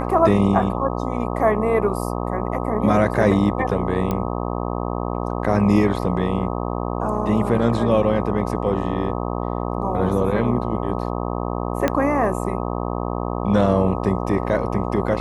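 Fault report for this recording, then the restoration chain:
mains buzz 60 Hz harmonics 21 −25 dBFS
0:04.11: click −11 dBFS
0:11.88: click −6 dBFS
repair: click removal
hum removal 60 Hz, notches 21

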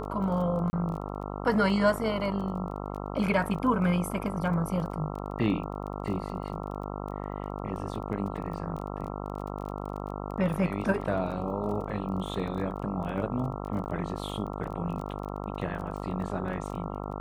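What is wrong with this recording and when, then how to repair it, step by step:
mains buzz 50 Hz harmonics 27 −36 dBFS
surface crackle 23 per second −37 dBFS
0:00.70–0:00.73: drop-out 30 ms
0:13.85–0:13.86: drop-out 9.3 ms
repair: click removal
hum removal 50 Hz, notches 27
repair the gap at 0:00.70, 30 ms
repair the gap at 0:13.85, 9.3 ms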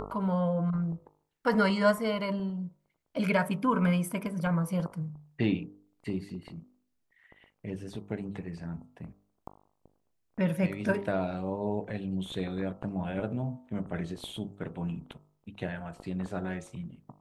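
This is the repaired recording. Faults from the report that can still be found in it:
none of them is left

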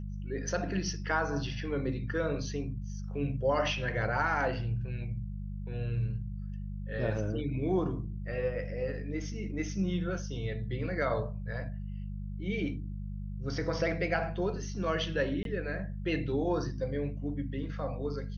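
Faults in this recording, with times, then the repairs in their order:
mains hum 50 Hz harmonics 4 −38 dBFS
0:15.43–0:15.45: drop-out 22 ms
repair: hum removal 50 Hz, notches 4
repair the gap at 0:15.43, 22 ms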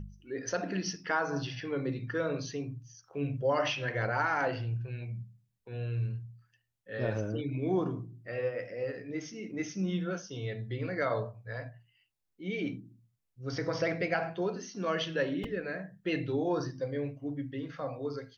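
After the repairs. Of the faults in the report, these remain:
none of them is left

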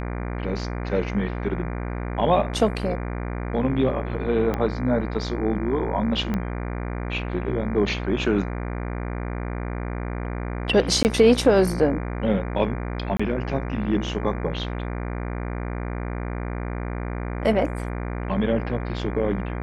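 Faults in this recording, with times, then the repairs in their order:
mains buzz 60 Hz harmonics 40 −29 dBFS
0:04.54: click −13 dBFS
0:06.34: click −14 dBFS
0:11.03–0:11.05: drop-out 19 ms
0:13.17–0:13.20: drop-out 25 ms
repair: click removal
hum removal 60 Hz, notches 40
repair the gap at 0:11.03, 19 ms
repair the gap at 0:13.17, 25 ms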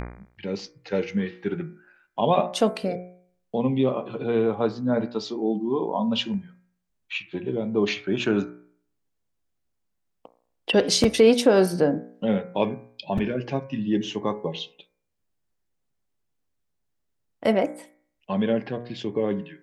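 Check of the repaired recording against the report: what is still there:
0:04.54: click
0:06.34: click

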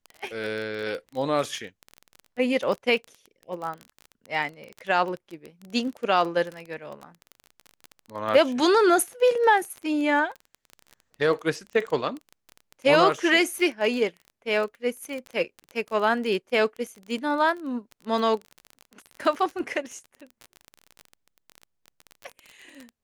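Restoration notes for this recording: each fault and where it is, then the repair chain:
surface crackle 21 per second −30 dBFS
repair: click removal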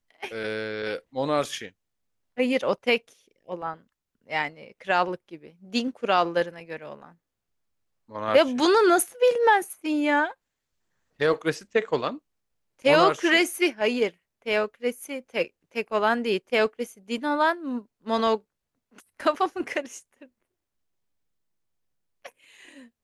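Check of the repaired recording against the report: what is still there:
none of them is left

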